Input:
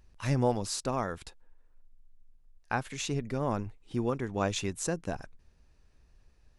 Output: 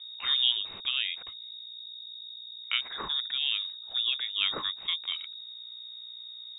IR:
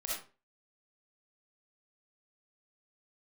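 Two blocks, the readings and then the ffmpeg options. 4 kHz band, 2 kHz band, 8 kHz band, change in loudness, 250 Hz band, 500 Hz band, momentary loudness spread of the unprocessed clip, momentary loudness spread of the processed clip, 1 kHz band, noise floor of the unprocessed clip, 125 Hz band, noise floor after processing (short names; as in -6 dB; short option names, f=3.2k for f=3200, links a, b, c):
+17.5 dB, +4.0 dB, under -40 dB, +4.0 dB, -21.5 dB, -18.5 dB, 9 LU, 15 LU, -8.5 dB, -63 dBFS, under -25 dB, -45 dBFS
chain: -af "aemphasis=mode=production:type=75fm,aeval=exprs='val(0)+0.00631*(sin(2*PI*60*n/s)+sin(2*PI*2*60*n/s)/2+sin(2*PI*3*60*n/s)/3+sin(2*PI*4*60*n/s)/4+sin(2*PI*5*60*n/s)/5)':c=same,lowpass=f=3.2k:t=q:w=0.5098,lowpass=f=3.2k:t=q:w=0.6013,lowpass=f=3.2k:t=q:w=0.9,lowpass=f=3.2k:t=q:w=2.563,afreqshift=-3800,volume=1dB"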